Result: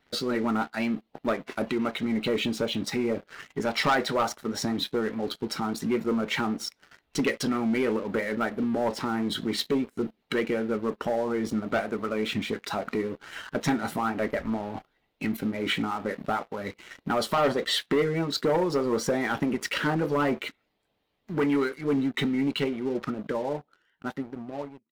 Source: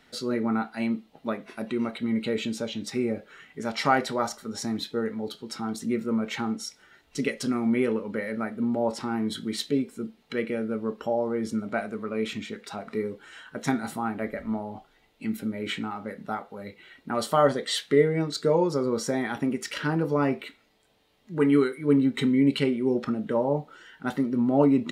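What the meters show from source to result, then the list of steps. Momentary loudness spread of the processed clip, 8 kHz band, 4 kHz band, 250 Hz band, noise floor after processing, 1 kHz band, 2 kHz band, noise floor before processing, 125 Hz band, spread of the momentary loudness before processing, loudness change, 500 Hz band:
9 LU, 0.0 dB, +3.5 dB, −2.0 dB, −74 dBFS, +0.5 dB, +3.0 dB, −63 dBFS, −2.0 dB, 13 LU, −1.0 dB, −1.0 dB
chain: fade-out on the ending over 3.77 s
in parallel at +2 dB: downward compressor 6 to 1, threshold −38 dBFS, peak gain reduction 21.5 dB
on the sum: harmonic and percussive parts rebalanced harmonic −8 dB
pitch vibrato 4.9 Hz 39 cents
parametric band 8,100 Hz −9.5 dB 1.3 octaves
leveller curve on the samples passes 3
level −6.5 dB

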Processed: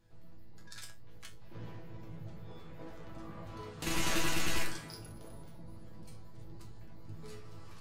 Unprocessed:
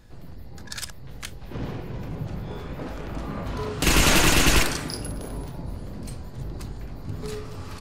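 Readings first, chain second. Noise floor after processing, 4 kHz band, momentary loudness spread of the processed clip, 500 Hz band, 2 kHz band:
−47 dBFS, −14.5 dB, 21 LU, −15.0 dB, −14.0 dB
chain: resonators tuned to a chord A2 fifth, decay 0.23 s
level −3.5 dB

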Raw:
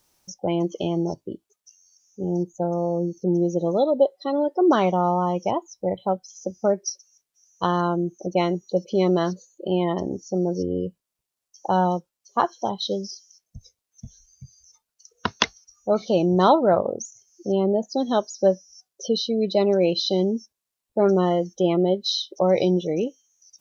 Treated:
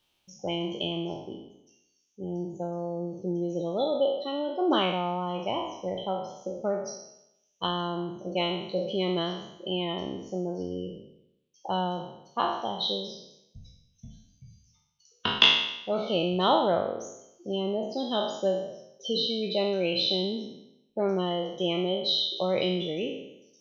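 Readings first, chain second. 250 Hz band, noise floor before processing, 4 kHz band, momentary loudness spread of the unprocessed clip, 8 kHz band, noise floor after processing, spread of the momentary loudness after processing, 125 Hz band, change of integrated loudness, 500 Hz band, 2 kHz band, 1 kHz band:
−8.0 dB, −85 dBFS, +4.0 dB, 12 LU, can't be measured, −70 dBFS, 13 LU, −8.5 dB, −5.5 dB, −7.0 dB, +1.0 dB, −6.5 dB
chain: peak hold with a decay on every bin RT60 0.83 s
drawn EQ curve 1,900 Hz 0 dB, 3,100 Hz +14 dB, 5,500 Hz −7 dB
level −9 dB

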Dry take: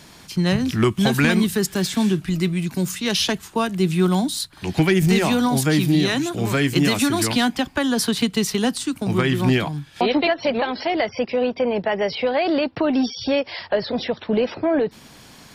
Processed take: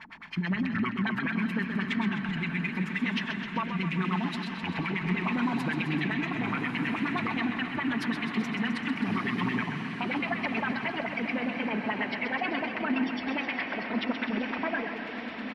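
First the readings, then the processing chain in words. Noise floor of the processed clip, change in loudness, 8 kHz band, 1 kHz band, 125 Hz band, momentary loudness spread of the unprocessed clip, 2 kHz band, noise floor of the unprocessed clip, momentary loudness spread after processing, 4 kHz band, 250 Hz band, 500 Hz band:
−38 dBFS, −9.5 dB, below −25 dB, −7.0 dB, −12.0 dB, 6 LU, −3.5 dB, −46 dBFS, 3 LU, −13.0 dB, −9.0 dB, −16.5 dB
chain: comb filter 4.5 ms, depth 38%
auto-filter low-pass sine 9.5 Hz 220–2,600 Hz
first-order pre-emphasis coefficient 0.9
downward compressor, threshold −34 dBFS, peak gain reduction 10 dB
octave-band graphic EQ 250/500/1,000/2,000/4,000/8,000 Hz +4/−10/+8/+8/−4/−9 dB
brickwall limiter −28.5 dBFS, peak gain reduction 12 dB
on a send: feedback delay with all-pass diffusion 1,234 ms, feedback 55%, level −7.5 dB
on the sum: feedback echo with a swinging delay time 129 ms, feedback 70%, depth 78 cents, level −8 dB
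level +7 dB

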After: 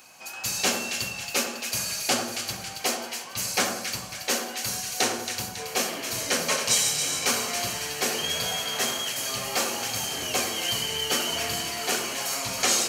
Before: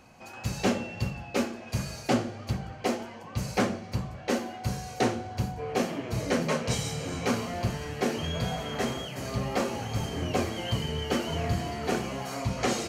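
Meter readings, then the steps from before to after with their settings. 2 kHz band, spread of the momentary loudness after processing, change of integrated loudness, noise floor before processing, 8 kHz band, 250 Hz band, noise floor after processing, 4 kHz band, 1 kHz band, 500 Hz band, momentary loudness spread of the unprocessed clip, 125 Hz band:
+6.5 dB, 6 LU, +5.0 dB, −44 dBFS, +15.0 dB, −6.5 dB, −39 dBFS, +11.0 dB, +1.5 dB, −2.0 dB, 6 LU, −11.5 dB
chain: spectral tilt +4.5 dB per octave
notch filter 2,000 Hz, Q 23
echo with a time of its own for lows and highs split 1,600 Hz, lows 88 ms, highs 275 ms, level −7 dB
level +1.5 dB

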